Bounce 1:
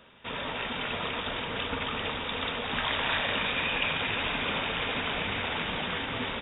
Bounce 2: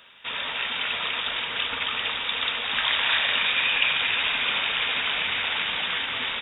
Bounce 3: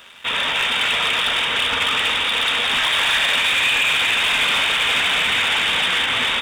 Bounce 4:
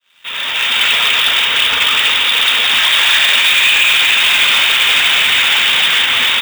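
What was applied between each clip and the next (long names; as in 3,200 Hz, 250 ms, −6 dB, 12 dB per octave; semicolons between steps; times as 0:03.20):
tilt shelving filter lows −10 dB, about 920 Hz
brickwall limiter −15.5 dBFS, peak gain reduction 6 dB; leveller curve on the samples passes 2; on a send at −11 dB: convolution reverb RT60 0.90 s, pre-delay 38 ms; on the sum: level +3 dB
fade in at the beginning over 0.82 s; tilt shelving filter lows −5.5 dB, about 1,400 Hz; bad sample-rate conversion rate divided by 2×, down filtered, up hold; level +4.5 dB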